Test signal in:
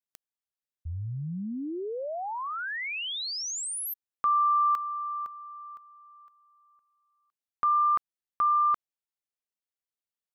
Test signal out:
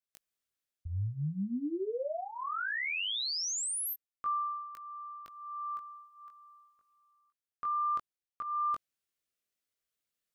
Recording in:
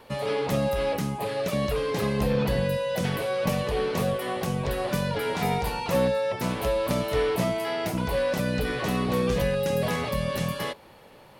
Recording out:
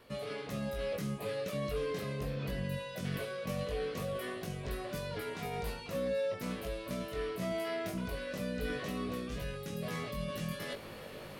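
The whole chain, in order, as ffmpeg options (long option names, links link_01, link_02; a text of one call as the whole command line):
ffmpeg -i in.wav -af "areverse,acompressor=threshold=-39dB:ratio=4:attack=0.43:release=609:detection=rms,areverse,equalizer=frequency=870:width=4.7:gain=-12,flanger=delay=19:depth=2.2:speed=0.2,volume=8.5dB" out.wav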